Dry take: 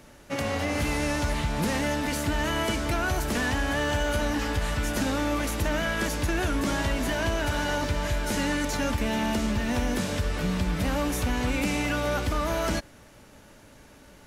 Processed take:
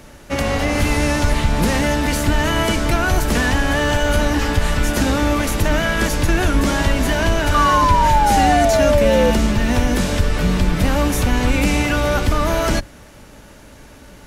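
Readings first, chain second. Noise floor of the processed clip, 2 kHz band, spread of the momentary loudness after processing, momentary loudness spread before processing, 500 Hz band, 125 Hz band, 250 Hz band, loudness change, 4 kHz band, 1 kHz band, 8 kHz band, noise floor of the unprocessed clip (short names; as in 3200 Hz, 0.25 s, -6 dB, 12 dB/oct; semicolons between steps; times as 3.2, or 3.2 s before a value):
-42 dBFS, +8.5 dB, 5 LU, 2 LU, +11.0 dB, +10.5 dB, +8.5 dB, +10.0 dB, +8.5 dB, +13.0 dB, +8.5 dB, -52 dBFS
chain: octaver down 2 oct, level -1 dB; painted sound fall, 7.54–9.31, 490–1200 Hz -24 dBFS; gain +8.5 dB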